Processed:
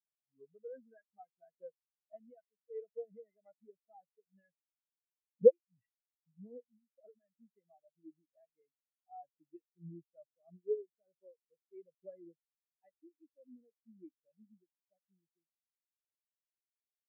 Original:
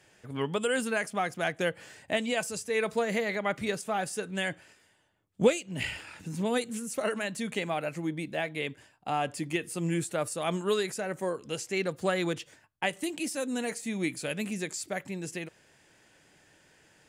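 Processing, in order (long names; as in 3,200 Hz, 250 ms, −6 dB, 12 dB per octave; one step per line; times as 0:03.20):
high-shelf EQ 4,700 Hz −7 dB
every bin expanded away from the loudest bin 4 to 1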